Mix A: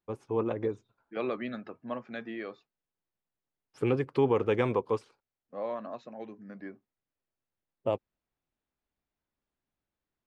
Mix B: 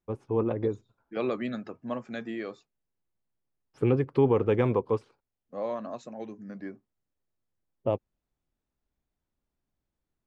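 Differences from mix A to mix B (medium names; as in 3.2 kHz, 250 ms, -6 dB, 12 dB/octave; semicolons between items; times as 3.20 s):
second voice: remove distance through air 270 m; master: add tilt EQ -2 dB/octave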